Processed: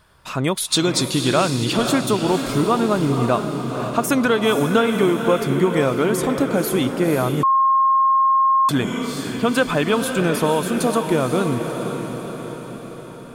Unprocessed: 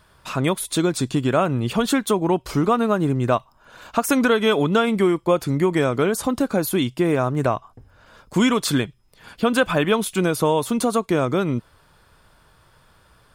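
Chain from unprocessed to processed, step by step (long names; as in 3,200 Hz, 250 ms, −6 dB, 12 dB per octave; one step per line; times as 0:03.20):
0:00.57–0:01.77: parametric band 4,600 Hz +11.5 dB 1.6 octaves
feedback delay with all-pass diffusion 512 ms, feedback 59%, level −6.5 dB
0:07.43–0:08.69: beep over 1,070 Hz −12.5 dBFS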